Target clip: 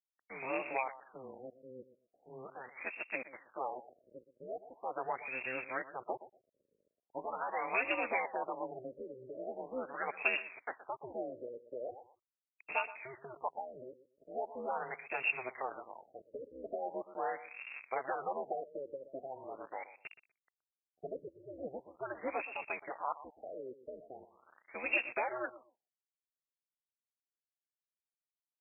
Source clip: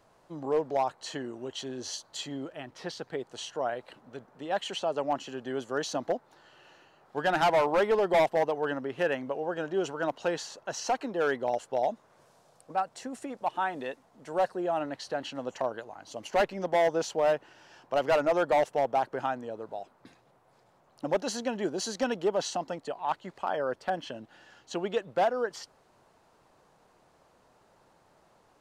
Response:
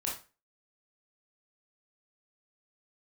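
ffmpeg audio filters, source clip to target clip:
-filter_complex "[0:a]aeval=exprs='val(0)+0.5*0.00631*sgn(val(0))':channel_layout=same,bandreject=frequency=2100:width=7,aeval=exprs='val(0)*sin(2*PI*130*n/s)':channel_layout=same,aeval=exprs='val(0)*gte(abs(val(0)),0.00631)':channel_layout=same,aderivative,acompressor=threshold=-48dB:ratio=6,aexciter=amount=10.4:drive=6.6:freq=2600,asplit=2[link_01][link_02];[link_02]adelay=122,lowpass=frequency=4600:poles=1,volume=-15dB,asplit=2[link_03][link_04];[link_04]adelay=122,lowpass=frequency=4600:poles=1,volume=0.19[link_05];[link_03][link_05]amix=inputs=2:normalize=0[link_06];[link_01][link_06]amix=inputs=2:normalize=0,afftfilt=real='re*lt(b*sr/1024,590*pow(2800/590,0.5+0.5*sin(2*PI*0.41*pts/sr)))':imag='im*lt(b*sr/1024,590*pow(2800/590,0.5+0.5*sin(2*PI*0.41*pts/sr)))':win_size=1024:overlap=0.75,volume=17.5dB"

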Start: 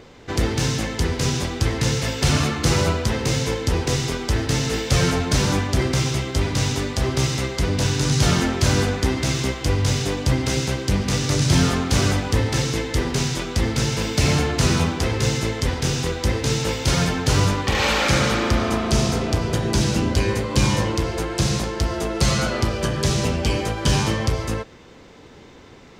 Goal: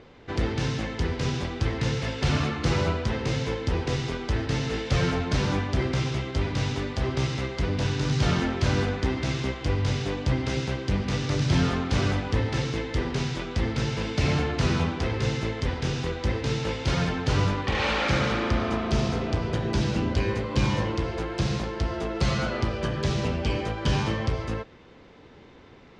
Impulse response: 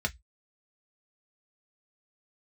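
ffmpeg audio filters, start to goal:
-af "lowpass=3900,volume=-5dB"

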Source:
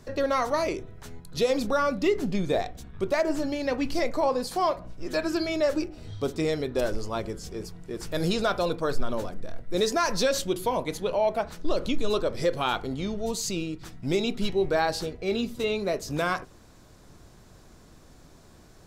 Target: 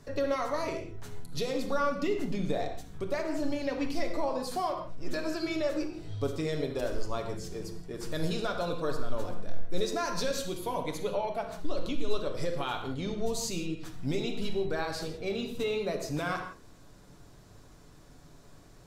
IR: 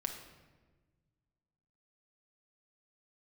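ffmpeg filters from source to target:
-filter_complex "[0:a]alimiter=limit=-19.5dB:level=0:latency=1:release=288[link_01];[1:a]atrim=start_sample=2205,atrim=end_sample=6174,asetrate=33075,aresample=44100[link_02];[link_01][link_02]afir=irnorm=-1:irlink=0,volume=-4.5dB"

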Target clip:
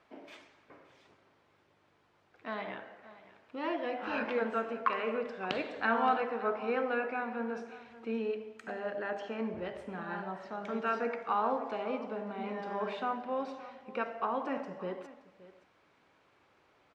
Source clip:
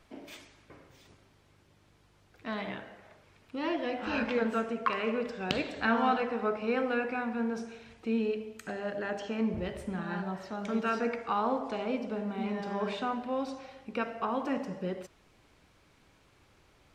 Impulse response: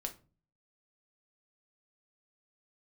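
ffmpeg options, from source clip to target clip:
-af "bandpass=frequency=940:width_type=q:width=0.5:csg=0,aecho=1:1:572:0.133"

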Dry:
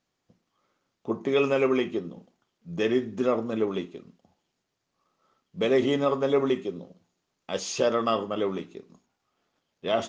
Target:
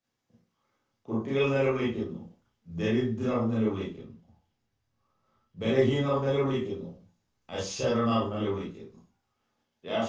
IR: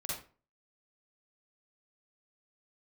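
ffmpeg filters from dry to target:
-filter_complex "[0:a]asettb=1/sr,asplit=3[link_01][link_02][link_03];[link_01]atrim=end=3.904[link_04];[link_02]atrim=start=3.9:end=5.59,asetpts=PTS-STARTPTS,afade=type=in:duration=0.004:curve=qsin,afade=type=out:start_time=1.686:duration=0.004:curve=qsin,highshelf=frequency=6000:gain=-7[link_05];[link_03]atrim=start=5.586[link_06];[link_04][link_05]acrossfade=duration=0.004:curve1=hsin:curve2=qsin[link_07];[link_07][link_06]acrossfade=duration=0.004:curve1=qsin:curve2=hsin,acrossover=split=100|880|2500[link_08][link_09][link_10][link_11];[link_08]dynaudnorm=framelen=130:gausssize=17:maxgain=15.5dB[link_12];[link_12][link_09][link_10][link_11]amix=inputs=4:normalize=0[link_13];[1:a]atrim=start_sample=2205,asetrate=61740,aresample=44100[link_14];[link_13][link_14]afir=irnorm=-1:irlink=0,volume=-1.5dB"

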